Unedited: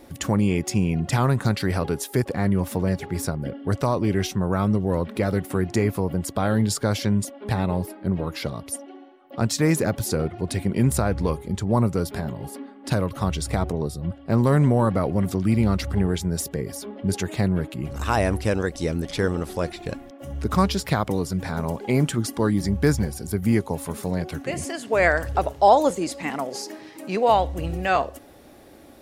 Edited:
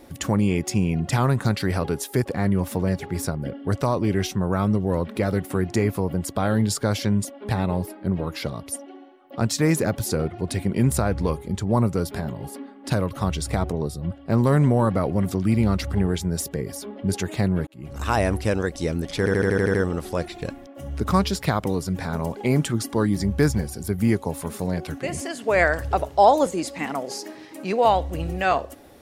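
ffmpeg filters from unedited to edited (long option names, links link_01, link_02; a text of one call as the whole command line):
ffmpeg -i in.wav -filter_complex "[0:a]asplit=9[link_01][link_02][link_03][link_04][link_05][link_06][link_07][link_08][link_09];[link_01]atrim=end=17.67,asetpts=PTS-STARTPTS,afade=type=out:start_time=17.666:duration=0.004:curve=hsin[link_10];[link_02]atrim=start=17.67:end=19.262,asetpts=PTS-STARTPTS,afade=type=in:duration=0.39[link_11];[link_03]atrim=start=19.178:end=19.262[link_12];[link_04]atrim=start=19.178:end=19.262[link_13];[link_05]atrim=start=19.178:end=19.262[link_14];[link_06]atrim=start=19.178:end=19.262[link_15];[link_07]atrim=start=19.178:end=19.262[link_16];[link_08]atrim=start=19.178:end=19.262[link_17];[link_09]atrim=start=19.178[link_18];[link_10][link_11]concat=n=2:v=0:a=1[link_19];[link_19][link_12]acrossfade=duration=0.004:curve1=hsin:curve2=hsin[link_20];[link_20][link_13]acrossfade=duration=0.004:curve1=hsin:curve2=hsin[link_21];[link_21][link_14]acrossfade=duration=0.004:curve1=hsin:curve2=hsin[link_22];[link_22][link_15]acrossfade=duration=0.004:curve1=hsin:curve2=hsin[link_23];[link_23][link_16]acrossfade=duration=0.004:curve1=hsin:curve2=hsin[link_24];[link_24][link_17]acrossfade=duration=0.004:curve1=hsin:curve2=hsin[link_25];[link_25][link_18]acrossfade=duration=0.004:curve1=hsin:curve2=hsin" out.wav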